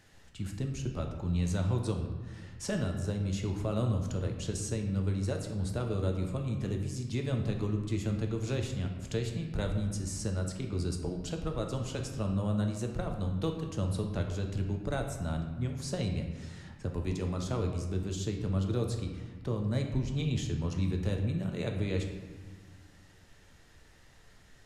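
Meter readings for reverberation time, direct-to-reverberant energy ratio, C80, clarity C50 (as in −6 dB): 1.5 s, 2.5 dB, 7.5 dB, 5.5 dB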